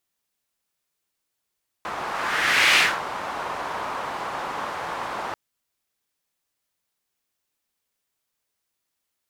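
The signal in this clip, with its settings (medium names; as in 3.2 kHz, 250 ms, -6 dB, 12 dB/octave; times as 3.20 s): whoosh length 3.49 s, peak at 0.93 s, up 0.83 s, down 0.24 s, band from 1 kHz, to 2.4 kHz, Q 1.8, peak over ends 13.5 dB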